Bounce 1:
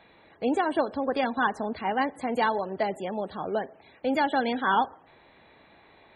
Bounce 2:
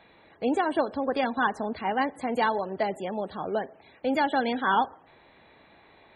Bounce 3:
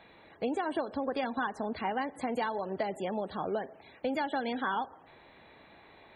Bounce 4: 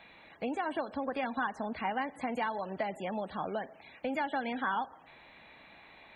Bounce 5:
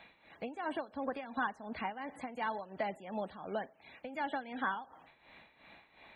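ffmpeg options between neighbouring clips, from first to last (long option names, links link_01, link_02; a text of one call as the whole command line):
ffmpeg -i in.wav -af anull out.wav
ffmpeg -i in.wav -af "acompressor=threshold=-29dB:ratio=6" out.wav
ffmpeg -i in.wav -filter_complex "[0:a]equalizer=frequency=100:width_type=o:width=0.67:gain=-6,equalizer=frequency=400:width_type=o:width=0.67:gain=-7,equalizer=frequency=2500:width_type=o:width=0.67:gain=6,equalizer=frequency=6300:width_type=o:width=0.67:gain=5,acrossover=split=2600[link_01][link_02];[link_02]acompressor=threshold=-57dB:ratio=4:attack=1:release=60[link_03];[link_01][link_03]amix=inputs=2:normalize=0" out.wav
ffmpeg -i in.wav -af "tremolo=f=2.8:d=0.75,volume=-1dB" out.wav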